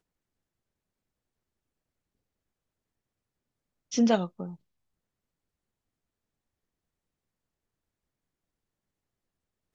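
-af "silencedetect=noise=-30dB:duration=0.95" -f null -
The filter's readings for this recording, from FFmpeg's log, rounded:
silence_start: 0.00
silence_end: 3.93 | silence_duration: 3.93
silence_start: 4.45
silence_end: 9.75 | silence_duration: 5.30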